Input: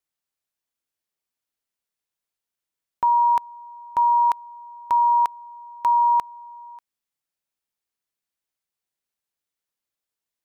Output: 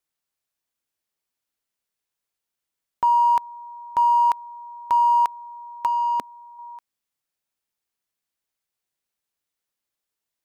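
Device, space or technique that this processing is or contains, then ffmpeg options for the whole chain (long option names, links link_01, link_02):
parallel distortion: -filter_complex "[0:a]asettb=1/sr,asplit=3[link_01][link_02][link_03];[link_01]atrim=end=5.864[link_04];[link_02]atrim=start=5.86:end=6.59,asetpts=PTS-STARTPTS,afade=type=in:duration=0.004:curve=qsin,afade=type=out:start_time=0.726:duration=0.004:curve=qsin,equalizer=frequency=250:width_type=o:width=1:gain=12,equalizer=frequency=500:width_type=o:width=1:gain=4,equalizer=frequency=1000:width_type=o:width=1:gain=-7[link_05];[link_03]atrim=start=6.586[link_06];[link_04][link_05]acrossfade=duration=0.004:curve1=hsin:curve2=qsin[link_07];[link_07][link_06]acrossfade=duration=0.004:curve1=qsin:curve2=hsin,asplit=2[link_08][link_09];[link_09]asoftclip=type=hard:threshold=-31.5dB,volume=-11.5dB[link_10];[link_08][link_10]amix=inputs=2:normalize=0"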